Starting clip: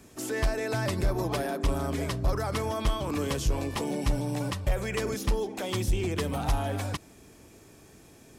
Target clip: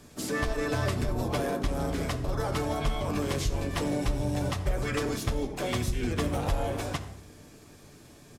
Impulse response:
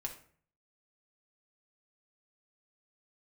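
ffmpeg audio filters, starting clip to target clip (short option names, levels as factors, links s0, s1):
-filter_complex "[0:a]acompressor=threshold=0.0562:ratio=20,asplit=3[s0][s1][s2];[s1]asetrate=29433,aresample=44100,atempo=1.49831,volume=0.794[s3];[s2]asetrate=55563,aresample=44100,atempo=0.793701,volume=0.158[s4];[s0][s3][s4]amix=inputs=3:normalize=0,asplit=2[s5][s6];[1:a]atrim=start_sample=2205,asetrate=28665,aresample=44100[s7];[s6][s7]afir=irnorm=-1:irlink=0,volume=1.26[s8];[s5][s8]amix=inputs=2:normalize=0,volume=0.398"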